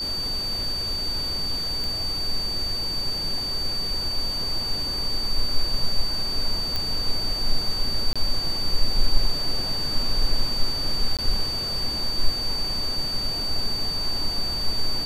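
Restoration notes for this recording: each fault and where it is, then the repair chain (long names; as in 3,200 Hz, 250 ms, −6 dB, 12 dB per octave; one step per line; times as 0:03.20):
whistle 4,600 Hz −26 dBFS
0:01.84: click
0:06.76: click
0:08.13–0:08.16: drop-out 26 ms
0:11.17–0:11.19: drop-out 17 ms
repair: click removal
notch filter 4,600 Hz, Q 30
repair the gap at 0:08.13, 26 ms
repair the gap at 0:11.17, 17 ms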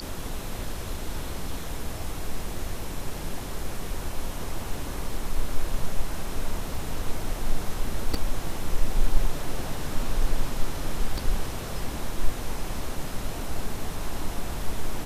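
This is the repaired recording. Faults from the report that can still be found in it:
none of them is left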